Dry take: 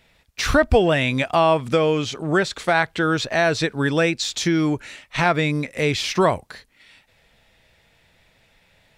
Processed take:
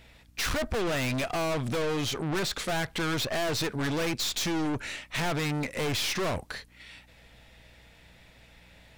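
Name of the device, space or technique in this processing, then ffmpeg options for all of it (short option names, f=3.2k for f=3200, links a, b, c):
valve amplifier with mains hum: -af "aeval=exprs='(tanh(35.5*val(0)+0.4)-tanh(0.4))/35.5':c=same,aeval=exprs='val(0)+0.000794*(sin(2*PI*60*n/s)+sin(2*PI*2*60*n/s)/2+sin(2*PI*3*60*n/s)/3+sin(2*PI*4*60*n/s)/4+sin(2*PI*5*60*n/s)/5)':c=same,volume=3.5dB"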